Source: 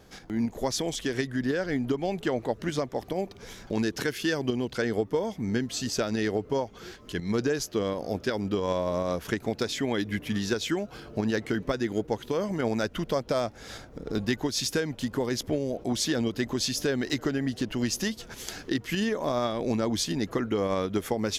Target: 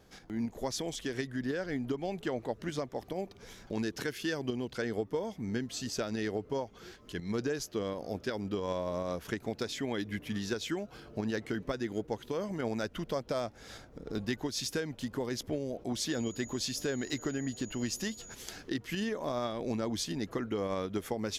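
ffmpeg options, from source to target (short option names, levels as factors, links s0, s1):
-filter_complex "[0:a]asettb=1/sr,asplit=3[s0][s1][s2];[s0]atrim=end=16.104[s3];[s1]atrim=start=16.1:end=18.35,asetpts=PTS-STARTPTS,afade=t=in:d=0.004:c=qsin,afade=t=out:st=2.246:d=0.004:c=qsin,aeval=exprs='val(0)+0.00794*sin(2*PI*6800*n/s)':c=same[s4];[s2]atrim=start=18.346[s5];[s3][s4]acrossfade=d=0.004:c1=hsin:c2=qsin[s6];[s6][s5]acrossfade=d=0.004:c1=qsin:c2=hsin,volume=0.473"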